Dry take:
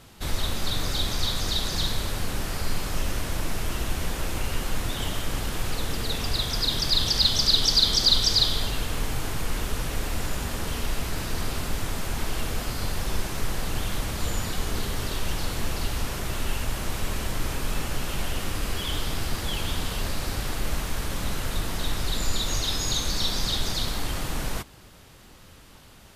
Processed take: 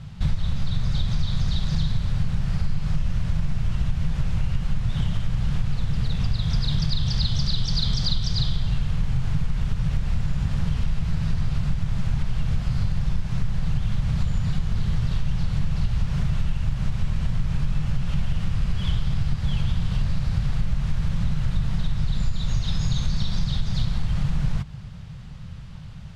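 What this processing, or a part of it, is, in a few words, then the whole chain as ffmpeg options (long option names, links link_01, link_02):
jukebox: -af "lowpass=5100,lowshelf=frequency=220:width_type=q:width=3:gain=12.5,acompressor=threshold=-18dB:ratio=6"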